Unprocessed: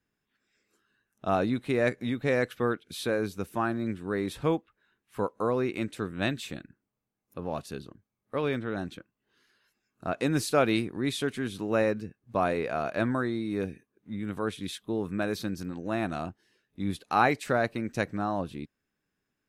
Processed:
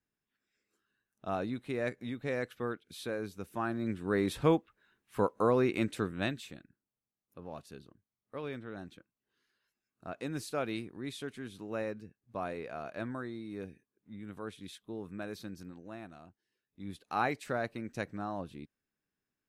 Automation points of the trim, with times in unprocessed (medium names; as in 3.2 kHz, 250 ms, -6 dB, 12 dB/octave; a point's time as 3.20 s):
3.41 s -8.5 dB
4.16 s +0.5 dB
5.98 s +0.5 dB
6.59 s -11 dB
15.68 s -11 dB
16.21 s -20 dB
17.20 s -8 dB